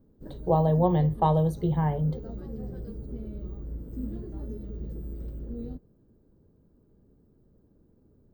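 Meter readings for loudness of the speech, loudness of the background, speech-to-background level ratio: −25.0 LKFS, −39.5 LKFS, 14.5 dB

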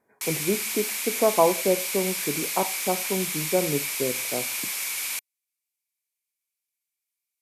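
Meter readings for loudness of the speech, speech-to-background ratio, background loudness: −27.5 LKFS, 0.0 dB, −27.5 LKFS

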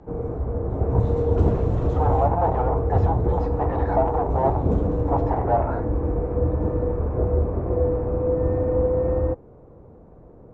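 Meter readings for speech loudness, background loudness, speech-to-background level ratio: −26.0 LKFS, −24.0 LKFS, −2.0 dB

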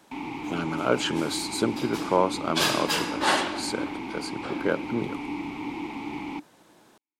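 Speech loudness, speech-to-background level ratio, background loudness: −27.5 LKFS, 7.0 dB, −34.5 LKFS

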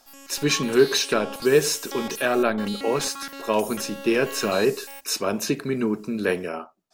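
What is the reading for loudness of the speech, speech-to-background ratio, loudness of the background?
−24.0 LKFS, 11.5 dB, −35.5 LKFS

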